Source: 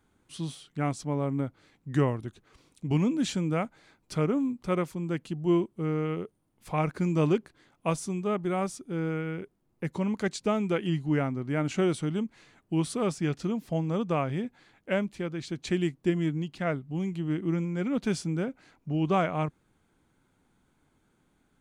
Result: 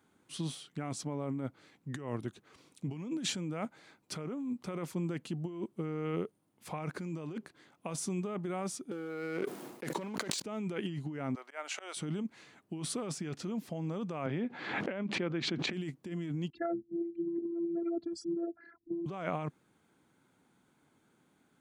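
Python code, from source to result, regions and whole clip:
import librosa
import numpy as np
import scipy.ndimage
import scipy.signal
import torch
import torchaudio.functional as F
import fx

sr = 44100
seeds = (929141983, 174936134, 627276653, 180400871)

y = fx.chain(x, sr, fx.highpass(hz=300.0, slope=12),
    fx.leveller(passes=3),
    fx.sustainer(db_per_s=69.0), at=(8.91, 10.42))
y = fx.chain(y, sr, fx.highpass(hz=620.0, slope=24),
    fx.auto_swell(attack_ms=200.0), at=(11.35, 11.97))
y = fx.chain(y, sr, fx.bandpass_edges(low_hz=150.0, high_hz=3000.0),
    fx.pre_swell(db_per_s=61.0), at=(14.26, 15.73))
y = fx.chain(y, sr, fx.envelope_sharpen(power=3.0),
    fx.high_shelf_res(hz=2100.0, db=-6.0, q=3.0),
    fx.robotise(hz=339.0), at=(16.5, 19.06))
y = fx.over_compress(y, sr, threshold_db=-32.0, ratio=-1.0)
y = scipy.signal.sosfilt(scipy.signal.butter(2, 140.0, 'highpass', fs=sr, output='sos'), y)
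y = F.gain(torch.from_numpy(y), -3.5).numpy()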